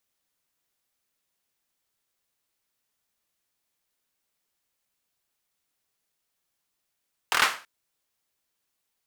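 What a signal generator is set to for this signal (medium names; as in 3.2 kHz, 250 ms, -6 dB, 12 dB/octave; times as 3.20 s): hand clap length 0.33 s, bursts 5, apart 25 ms, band 1.4 kHz, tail 0.36 s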